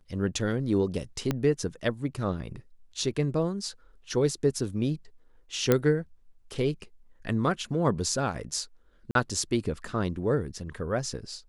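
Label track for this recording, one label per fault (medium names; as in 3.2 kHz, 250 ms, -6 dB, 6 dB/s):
1.310000	1.310000	pop -13 dBFS
5.720000	5.720000	pop -8 dBFS
9.110000	9.150000	dropout 42 ms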